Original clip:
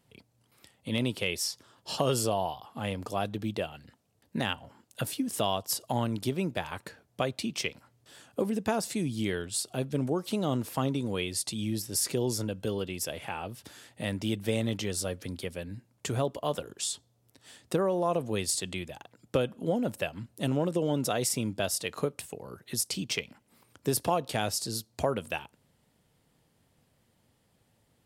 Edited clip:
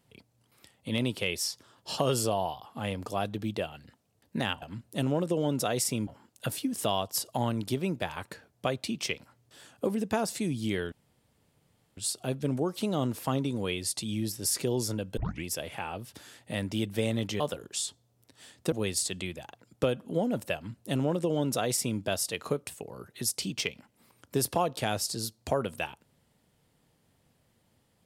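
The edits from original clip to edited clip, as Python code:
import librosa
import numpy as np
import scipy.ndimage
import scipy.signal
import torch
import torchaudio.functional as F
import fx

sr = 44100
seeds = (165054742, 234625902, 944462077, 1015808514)

y = fx.edit(x, sr, fx.insert_room_tone(at_s=9.47, length_s=1.05),
    fx.tape_start(start_s=12.67, length_s=0.27),
    fx.cut(start_s=14.9, length_s=1.56),
    fx.cut(start_s=17.78, length_s=0.46),
    fx.duplicate(start_s=20.07, length_s=1.45, to_s=4.62), tone=tone)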